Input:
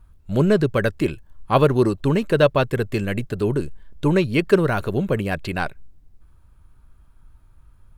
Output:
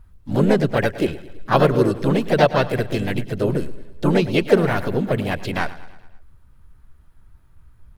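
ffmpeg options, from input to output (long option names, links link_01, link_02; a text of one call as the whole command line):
ffmpeg -i in.wav -filter_complex "[0:a]aecho=1:1:108|216|324|432|540:0.15|0.0823|0.0453|0.0249|0.0137,asplit=4[link_01][link_02][link_03][link_04];[link_02]asetrate=52444,aresample=44100,atempo=0.840896,volume=-7dB[link_05];[link_03]asetrate=55563,aresample=44100,atempo=0.793701,volume=-8dB[link_06];[link_04]asetrate=66075,aresample=44100,atempo=0.66742,volume=-10dB[link_07];[link_01][link_05][link_06][link_07]amix=inputs=4:normalize=0,volume=-1dB" out.wav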